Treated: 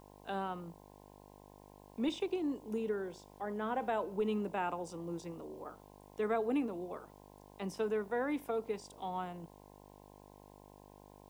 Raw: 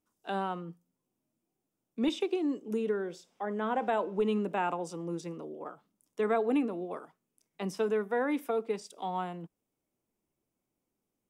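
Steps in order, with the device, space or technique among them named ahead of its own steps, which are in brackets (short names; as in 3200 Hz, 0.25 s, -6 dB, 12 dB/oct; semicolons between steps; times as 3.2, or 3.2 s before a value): video cassette with head-switching buzz (buzz 50 Hz, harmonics 21, -53 dBFS -1 dB/oct; white noise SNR 33 dB); gain -5 dB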